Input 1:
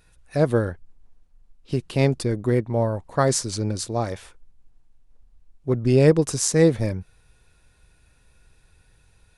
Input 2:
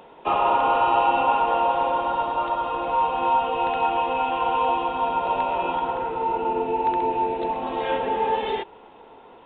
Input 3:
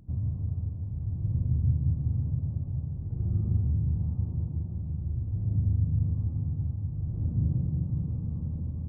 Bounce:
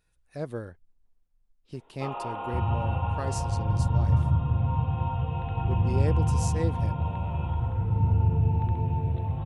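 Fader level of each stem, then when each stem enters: -14.5 dB, -15.0 dB, +3.0 dB; 0.00 s, 1.75 s, 2.45 s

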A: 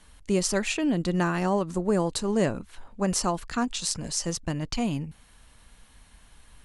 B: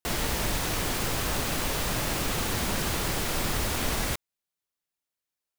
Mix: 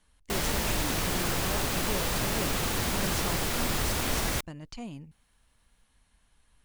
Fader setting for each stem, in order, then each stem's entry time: -12.5 dB, -0.5 dB; 0.00 s, 0.25 s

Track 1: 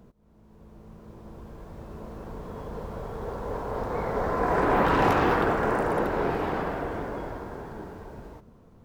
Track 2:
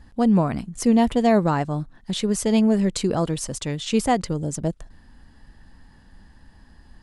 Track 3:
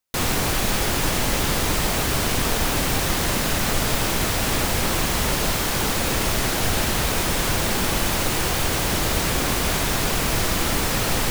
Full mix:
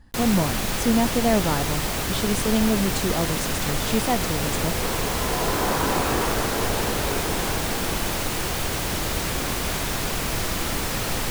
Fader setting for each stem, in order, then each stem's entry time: -3.0 dB, -3.5 dB, -4.0 dB; 0.90 s, 0.00 s, 0.00 s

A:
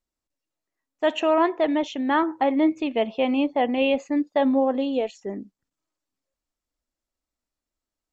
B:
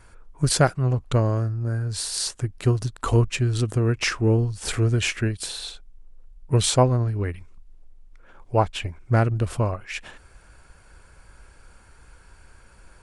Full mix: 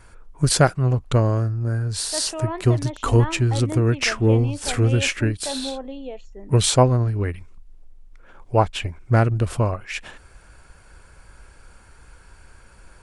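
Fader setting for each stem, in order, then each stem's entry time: -10.0 dB, +2.5 dB; 1.10 s, 0.00 s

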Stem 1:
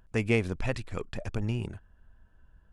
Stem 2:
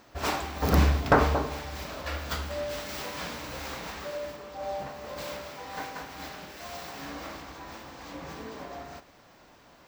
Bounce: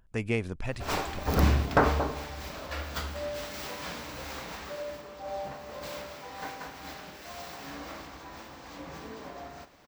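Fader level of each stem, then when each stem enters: -3.5 dB, -2.0 dB; 0.00 s, 0.65 s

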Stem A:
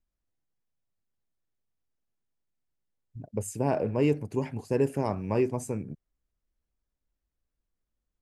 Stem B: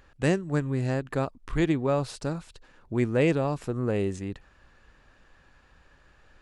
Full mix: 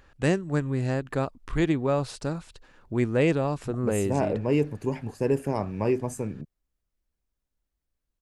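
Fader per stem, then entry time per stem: +1.0 dB, +0.5 dB; 0.50 s, 0.00 s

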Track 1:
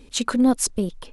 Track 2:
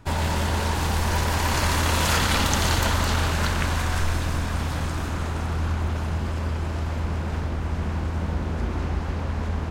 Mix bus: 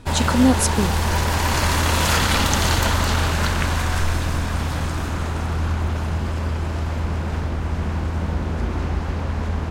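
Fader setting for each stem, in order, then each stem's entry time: +1.5 dB, +3.0 dB; 0.00 s, 0.00 s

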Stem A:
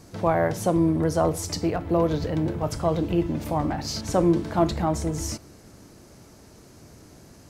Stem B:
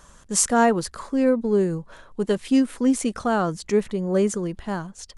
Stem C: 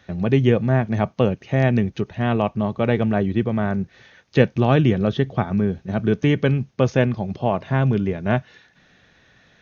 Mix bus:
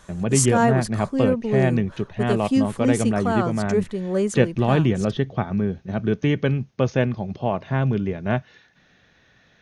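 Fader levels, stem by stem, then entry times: mute, -1.5 dB, -2.5 dB; mute, 0.00 s, 0.00 s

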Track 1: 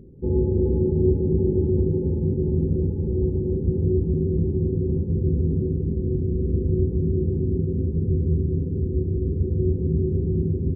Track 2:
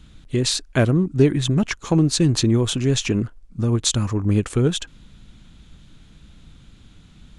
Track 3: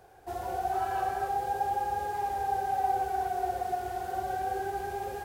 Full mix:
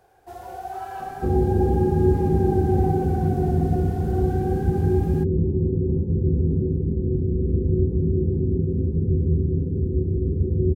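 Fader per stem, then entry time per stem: +1.0 dB, mute, -2.5 dB; 1.00 s, mute, 0.00 s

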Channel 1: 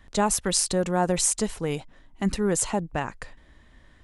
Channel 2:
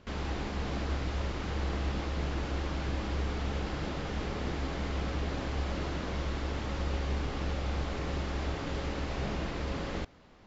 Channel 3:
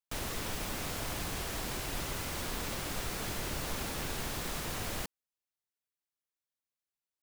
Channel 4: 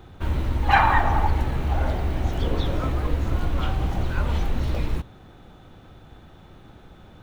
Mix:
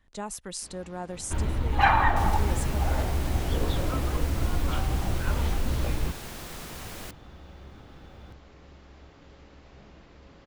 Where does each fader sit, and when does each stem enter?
-13.0 dB, -17.0 dB, -3.0 dB, -3.0 dB; 0.00 s, 0.55 s, 2.05 s, 1.10 s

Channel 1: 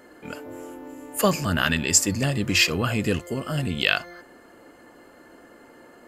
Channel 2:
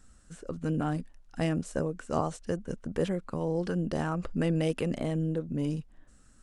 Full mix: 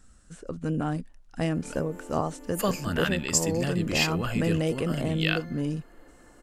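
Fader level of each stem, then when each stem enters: -6.5 dB, +1.5 dB; 1.40 s, 0.00 s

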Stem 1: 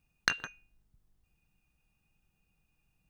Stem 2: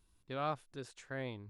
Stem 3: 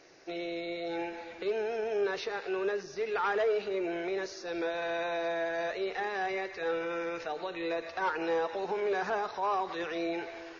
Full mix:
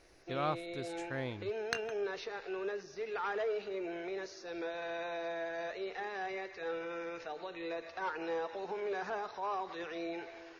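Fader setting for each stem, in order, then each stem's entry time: -8.0 dB, +2.0 dB, -6.5 dB; 1.45 s, 0.00 s, 0.00 s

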